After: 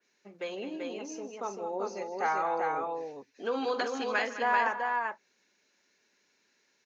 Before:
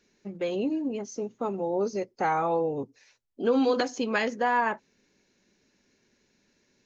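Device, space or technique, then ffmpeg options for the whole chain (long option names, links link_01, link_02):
filter by subtraction: -filter_complex "[0:a]asplit=2[link_01][link_02];[link_02]lowpass=1200,volume=-1[link_03];[link_01][link_03]amix=inputs=2:normalize=0,aecho=1:1:45|154|211|387:0.188|0.126|0.224|0.668,adynamicequalizer=threshold=0.00891:dfrequency=2800:dqfactor=0.7:tfrequency=2800:tqfactor=0.7:attack=5:release=100:ratio=0.375:range=2.5:mode=cutabove:tftype=highshelf,volume=-3dB"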